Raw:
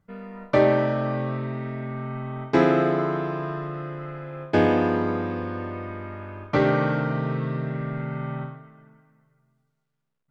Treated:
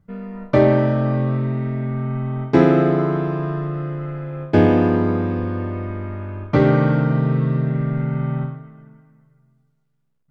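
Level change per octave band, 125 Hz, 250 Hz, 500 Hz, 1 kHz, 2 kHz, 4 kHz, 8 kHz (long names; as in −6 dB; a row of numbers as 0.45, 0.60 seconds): +9.5 dB, +7.0 dB, +3.5 dB, +1.5 dB, +0.5 dB, 0.0 dB, can't be measured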